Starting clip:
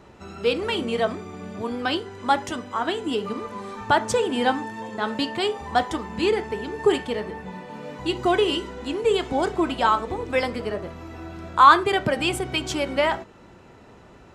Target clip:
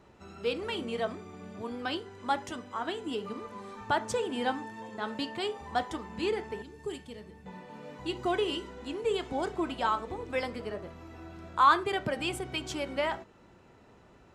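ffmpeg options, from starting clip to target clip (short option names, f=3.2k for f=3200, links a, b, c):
-filter_complex "[0:a]asettb=1/sr,asplit=3[a][b][c];[a]atrim=end=6.624[d];[b]atrim=start=6.62:end=7.46,asetpts=PTS-STARTPTS,afade=t=in:d=0.004:c=qsin,afade=t=out:st=0.836:d=0.004:c=qsin,equalizer=f=960:w=0.32:g=-13.5[e];[c]atrim=start=7.456[f];[d][e]acrossfade=d=0.004:c1=hsin:c2=qsin[g];[g][f]acrossfade=d=0.004:c1=qsin:c2=hsin,volume=-9dB"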